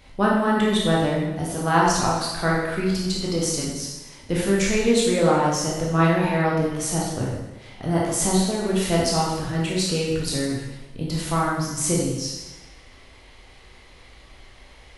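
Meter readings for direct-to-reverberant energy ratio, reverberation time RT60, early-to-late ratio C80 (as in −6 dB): −4.5 dB, 1.1 s, 3.5 dB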